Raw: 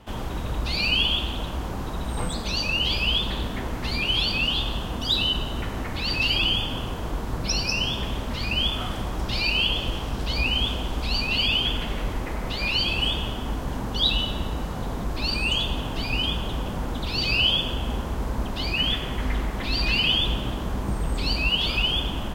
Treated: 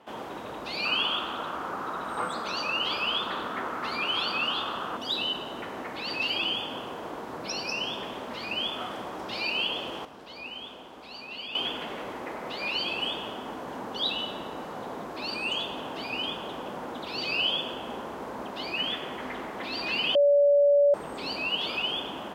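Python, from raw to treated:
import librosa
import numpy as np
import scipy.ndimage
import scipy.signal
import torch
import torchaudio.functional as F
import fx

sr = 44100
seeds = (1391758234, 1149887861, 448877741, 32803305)

y = fx.peak_eq(x, sr, hz=1300.0, db=12.5, octaves=0.59, at=(0.85, 4.97))
y = fx.edit(y, sr, fx.clip_gain(start_s=10.05, length_s=1.5, db=-9.5),
    fx.bleep(start_s=20.15, length_s=0.79, hz=573.0, db=-15.5), tone=tone)
y = scipy.signal.sosfilt(scipy.signal.butter(2, 360.0, 'highpass', fs=sr, output='sos'), y)
y = fx.high_shelf(y, sr, hz=2800.0, db=-11.0)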